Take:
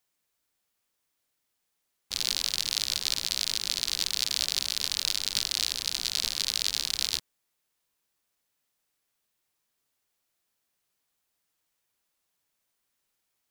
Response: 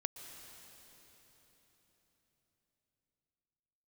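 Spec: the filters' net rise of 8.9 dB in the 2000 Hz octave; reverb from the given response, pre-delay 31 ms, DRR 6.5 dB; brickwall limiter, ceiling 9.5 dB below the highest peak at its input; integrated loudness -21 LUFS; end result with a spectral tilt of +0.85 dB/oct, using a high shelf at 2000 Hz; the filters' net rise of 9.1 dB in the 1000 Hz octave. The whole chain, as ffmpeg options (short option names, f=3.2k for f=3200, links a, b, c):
-filter_complex "[0:a]equalizer=f=1k:t=o:g=8,highshelf=f=2k:g=6,equalizer=f=2k:t=o:g=5.5,alimiter=limit=-8.5dB:level=0:latency=1,asplit=2[a][b];[1:a]atrim=start_sample=2205,adelay=31[c];[b][c]afir=irnorm=-1:irlink=0,volume=-5.5dB[d];[a][d]amix=inputs=2:normalize=0,volume=5.5dB"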